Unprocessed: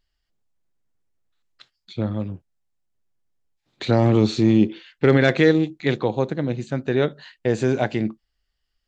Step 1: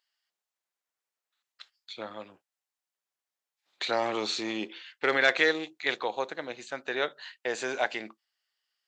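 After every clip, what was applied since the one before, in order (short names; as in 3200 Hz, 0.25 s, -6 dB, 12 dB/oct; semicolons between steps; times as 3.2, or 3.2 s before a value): HPF 830 Hz 12 dB/oct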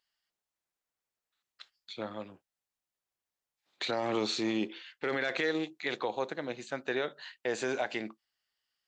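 low shelf 330 Hz +11 dB; limiter -18.5 dBFS, peak gain reduction 11 dB; gain -2.5 dB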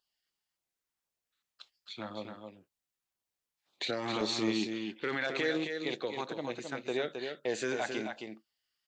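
LFO notch saw down 1.9 Hz 350–2200 Hz; on a send: echo 0.267 s -6 dB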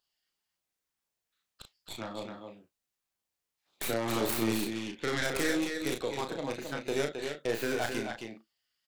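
tracing distortion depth 0.33 ms; doubler 35 ms -5.5 dB; gain +1 dB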